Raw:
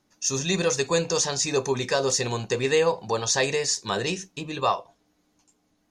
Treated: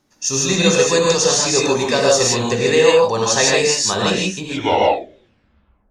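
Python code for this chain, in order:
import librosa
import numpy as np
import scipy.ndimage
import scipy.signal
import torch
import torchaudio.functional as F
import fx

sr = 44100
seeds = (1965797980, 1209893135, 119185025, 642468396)

y = fx.tape_stop_end(x, sr, length_s=1.54)
y = fx.rev_gated(y, sr, seeds[0], gate_ms=180, shape='rising', drr_db=-3.0)
y = y * 10.0 ** (4.5 / 20.0)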